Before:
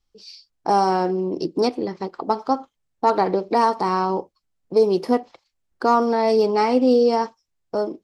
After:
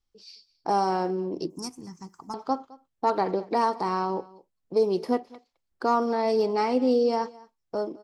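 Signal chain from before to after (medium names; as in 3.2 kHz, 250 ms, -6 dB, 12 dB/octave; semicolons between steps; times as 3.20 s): 1.50–2.34 s: FFT filter 170 Hz 0 dB, 560 Hz -25 dB, 970 Hz -6 dB, 4.1 kHz -16 dB, 6.2 kHz +15 dB; delay 212 ms -22 dB; trim -6 dB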